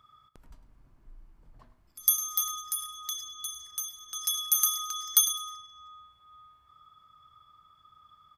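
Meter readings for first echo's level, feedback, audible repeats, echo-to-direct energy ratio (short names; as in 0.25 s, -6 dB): -15.0 dB, 24%, 2, -14.5 dB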